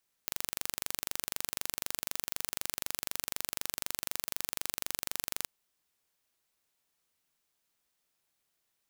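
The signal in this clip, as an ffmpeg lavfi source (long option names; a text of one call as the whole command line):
ffmpeg -f lavfi -i "aevalsrc='0.531*eq(mod(n,1838),0)':duration=5.17:sample_rate=44100" out.wav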